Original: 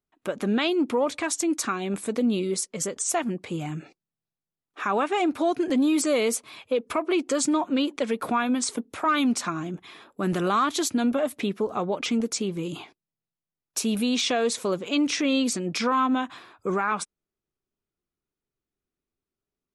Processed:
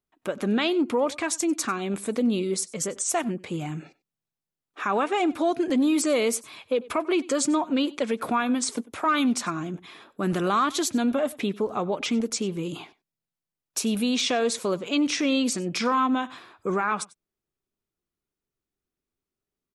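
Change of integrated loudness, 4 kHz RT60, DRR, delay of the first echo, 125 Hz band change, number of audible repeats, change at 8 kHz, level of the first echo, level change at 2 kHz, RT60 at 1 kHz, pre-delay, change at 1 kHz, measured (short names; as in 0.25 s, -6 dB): 0.0 dB, none, none, 95 ms, 0.0 dB, 1, 0.0 dB, -21.5 dB, 0.0 dB, none, none, 0.0 dB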